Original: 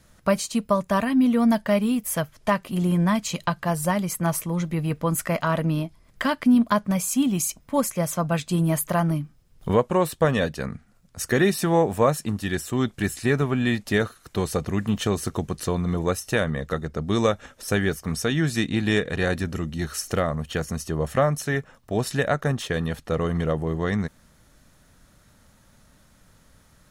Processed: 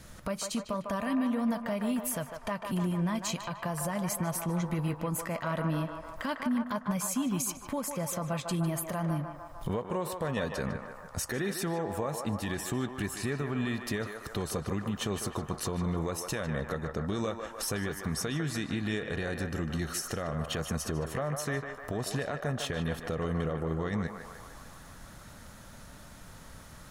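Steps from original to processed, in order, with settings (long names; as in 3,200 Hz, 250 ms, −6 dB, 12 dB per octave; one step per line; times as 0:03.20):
downward compressor 5 to 1, threshold −36 dBFS, peak gain reduction 19.5 dB
brickwall limiter −30 dBFS, peak gain reduction 11.5 dB
feedback echo with a band-pass in the loop 151 ms, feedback 78%, band-pass 1,000 Hz, level −4 dB
level +6.5 dB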